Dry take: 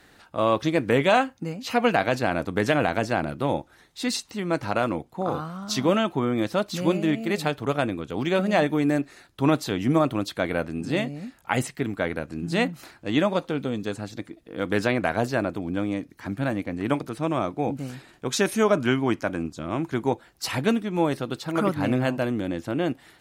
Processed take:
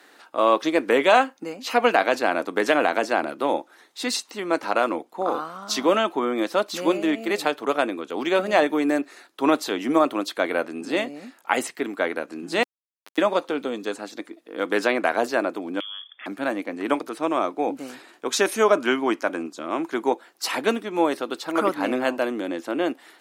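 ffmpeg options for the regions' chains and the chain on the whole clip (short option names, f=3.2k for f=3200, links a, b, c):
-filter_complex "[0:a]asettb=1/sr,asplit=3[a][b][c];[a]atrim=end=12.634[d];[b]atrim=start=12.63:end=13.18,asetpts=PTS-STARTPTS,afade=t=in:d=0.004:c=qsin,afade=t=out:st=0.546:d=0.004:c=qsin,highpass=f=160:w=0.5412,highpass=f=160:w=1.3066,acompressor=threshold=-42dB:ratio=4:attack=3.2:release=140:knee=1:detection=peak,aeval=exprs='val(0)*gte(abs(val(0)),0.0266)':c=same[e];[c]atrim=start=13.176[f];[d][e]acrossfade=d=0.004:c1=hsin:c2=qsin[g];[g][f]acrossfade=d=0.004:c1=qsin:c2=hsin,asettb=1/sr,asplit=3[h][i][j];[h]atrim=end=15.804[k];[i]atrim=start=15.8:end=16.26,asetpts=PTS-STARTPTS,afade=t=in:d=0.004:c=qsin,afade=t=out:st=0.456:d=0.004:c=qsin,lowpass=f=3.1k:t=q:w=0.5098,lowpass=f=3.1k:t=q:w=0.6013,lowpass=f=3.1k:t=q:w=0.9,lowpass=f=3.1k:t=q:w=2.563,afreqshift=-3600,acompressor=threshold=-35dB:ratio=10:attack=3.2:release=140:knee=1:detection=peak[l];[j]atrim=start=16.256[m];[k][l]acrossfade=d=0.004:c1=hsin:c2=qsin[n];[n][m]acrossfade=d=0.004:c1=qsin:c2=hsin,highpass=f=280:w=0.5412,highpass=f=280:w=1.3066,equalizer=f=1.1k:t=o:w=0.77:g=2.5,volume=2.5dB"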